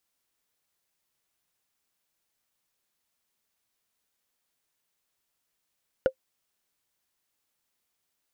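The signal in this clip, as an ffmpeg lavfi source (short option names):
-f lavfi -i "aevalsrc='0.237*pow(10,-3*t/0.08)*sin(2*PI*524*t)+0.0708*pow(10,-3*t/0.024)*sin(2*PI*1444.7*t)+0.0211*pow(10,-3*t/0.011)*sin(2*PI*2831.7*t)+0.00631*pow(10,-3*t/0.006)*sin(2*PI*4680.9*t)+0.00188*pow(10,-3*t/0.004)*sin(2*PI*6990.2*t)':d=0.45:s=44100"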